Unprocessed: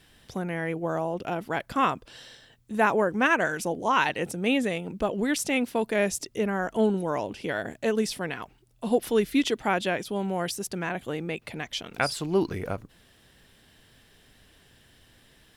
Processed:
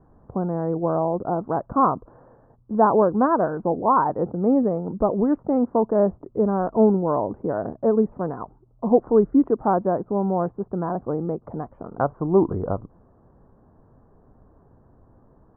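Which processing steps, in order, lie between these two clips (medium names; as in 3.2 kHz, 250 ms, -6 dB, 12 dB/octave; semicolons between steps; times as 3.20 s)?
steep low-pass 1.2 kHz 48 dB/octave; trim +6.5 dB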